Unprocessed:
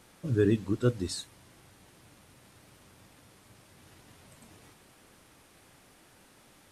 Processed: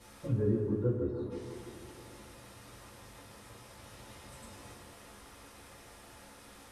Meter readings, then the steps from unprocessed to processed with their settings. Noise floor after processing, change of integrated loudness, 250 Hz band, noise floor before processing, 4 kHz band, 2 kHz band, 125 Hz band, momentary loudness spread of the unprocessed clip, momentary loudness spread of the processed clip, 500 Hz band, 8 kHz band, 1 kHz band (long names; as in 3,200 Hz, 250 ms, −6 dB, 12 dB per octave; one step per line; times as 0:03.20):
−54 dBFS, −5.0 dB, −4.0 dB, −60 dBFS, −8.0 dB, −6.5 dB, −2.0 dB, 12 LU, 21 LU, −3.0 dB, −5.5 dB, +0.5 dB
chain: treble cut that deepens with the level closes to 700 Hz, closed at −27.5 dBFS
gain on a spectral selection 0:01.10–0:01.31, 1,300–9,600 Hz −19 dB
downward compressor 2 to 1, threshold −35 dBFS, peak gain reduction 8.5 dB
on a send: delay with a band-pass on its return 156 ms, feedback 62%, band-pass 810 Hz, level −4 dB
on the sum: coupled-rooms reverb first 0.25 s, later 3 s, from −17 dB, DRR −9.5 dB
level −5.5 dB